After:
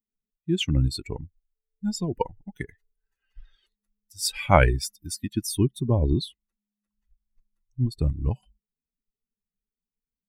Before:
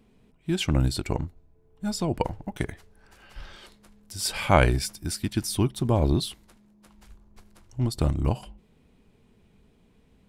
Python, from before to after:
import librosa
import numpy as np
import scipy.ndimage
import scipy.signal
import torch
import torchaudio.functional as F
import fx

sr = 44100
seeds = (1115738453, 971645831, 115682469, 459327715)

y = fx.bin_expand(x, sr, power=2.0)
y = fx.lowpass(y, sr, hz=3600.0, slope=6, at=(5.82, 7.99))
y = y * 10.0 ** (4.0 / 20.0)